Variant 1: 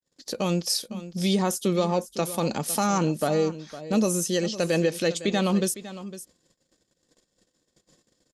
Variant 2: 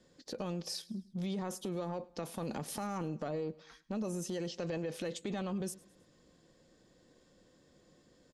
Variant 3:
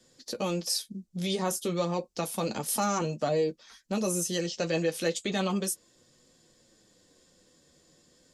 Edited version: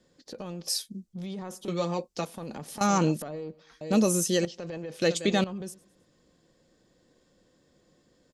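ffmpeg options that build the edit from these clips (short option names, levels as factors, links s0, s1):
-filter_complex "[2:a]asplit=2[s0][s1];[0:a]asplit=3[s2][s3][s4];[1:a]asplit=6[s5][s6][s7][s8][s9][s10];[s5]atrim=end=0.682[s11];[s0]atrim=start=0.678:end=1.132[s12];[s6]atrim=start=1.128:end=1.682[s13];[s1]atrim=start=1.678:end=2.252[s14];[s7]atrim=start=2.248:end=2.812[s15];[s2]atrim=start=2.808:end=3.222[s16];[s8]atrim=start=3.218:end=3.812[s17];[s3]atrim=start=3.808:end=4.452[s18];[s9]atrim=start=4.448:end=5.022[s19];[s4]atrim=start=5.018:end=5.442[s20];[s10]atrim=start=5.438[s21];[s11][s12]acrossfade=d=0.004:c1=hsin:c2=hsin[s22];[s22][s13]acrossfade=d=0.004:c1=hsin:c2=hsin[s23];[s23][s14]acrossfade=d=0.004:c1=hsin:c2=hsin[s24];[s24][s15]acrossfade=d=0.004:c1=hsin:c2=hsin[s25];[s25][s16]acrossfade=d=0.004:c1=hsin:c2=hsin[s26];[s26][s17]acrossfade=d=0.004:c1=hsin:c2=hsin[s27];[s27][s18]acrossfade=d=0.004:c1=hsin:c2=hsin[s28];[s28][s19]acrossfade=d=0.004:c1=hsin:c2=hsin[s29];[s29][s20]acrossfade=d=0.004:c1=hsin:c2=hsin[s30];[s30][s21]acrossfade=d=0.004:c1=hsin:c2=hsin"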